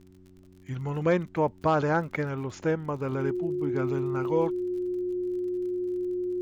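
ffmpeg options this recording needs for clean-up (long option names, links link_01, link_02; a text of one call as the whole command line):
ffmpeg -i in.wav -af "adeclick=threshold=4,bandreject=frequency=92.7:width_type=h:width=4,bandreject=frequency=185.4:width_type=h:width=4,bandreject=frequency=278.1:width_type=h:width=4,bandreject=frequency=370.8:width_type=h:width=4,bandreject=frequency=360:width=30,agate=range=-21dB:threshold=-45dB" out.wav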